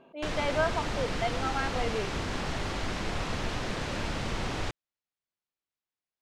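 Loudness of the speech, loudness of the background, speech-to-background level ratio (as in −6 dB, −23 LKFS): −33.0 LKFS, −33.5 LKFS, 0.5 dB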